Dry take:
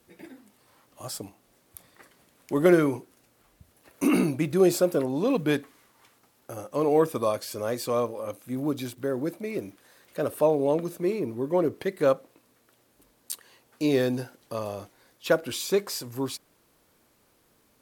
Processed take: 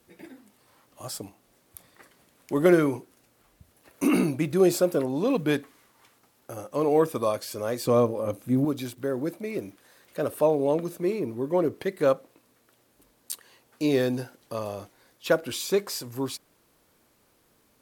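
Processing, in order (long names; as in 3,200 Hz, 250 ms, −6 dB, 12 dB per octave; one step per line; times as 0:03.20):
0:07.85–0:08.65: low-shelf EQ 490 Hz +10.5 dB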